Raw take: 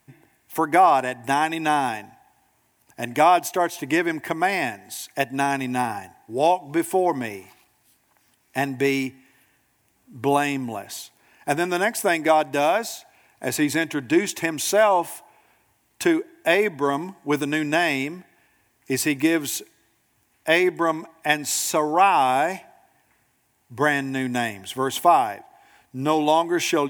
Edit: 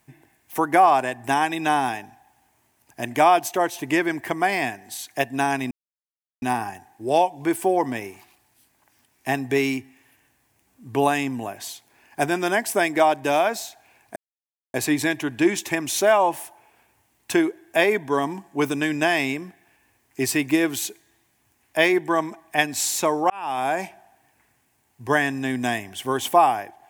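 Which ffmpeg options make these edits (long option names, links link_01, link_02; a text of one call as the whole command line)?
ffmpeg -i in.wav -filter_complex "[0:a]asplit=4[link_01][link_02][link_03][link_04];[link_01]atrim=end=5.71,asetpts=PTS-STARTPTS,afade=type=out:start_time=5.706:duration=0.004:curve=hsin,apad=pad_dur=0.71[link_05];[link_02]atrim=start=5.71:end=13.45,asetpts=PTS-STARTPTS,afade=type=in:duration=0.004:curve=hsin,afade=type=out:start_time=7.736:duration=0.004:curve=hsin,apad=pad_dur=0.58[link_06];[link_03]atrim=start=13.45:end=22.01,asetpts=PTS-STARTPTS,afade=type=in:duration=0.004:curve=hsin,afade=type=out:start_time=8.556:duration=0.004:curve=hsin[link_07];[link_04]atrim=start=22.01,asetpts=PTS-STARTPTS,afade=type=in:duration=0.53[link_08];[link_05][link_06][link_07][link_08]concat=n=4:v=0:a=1" out.wav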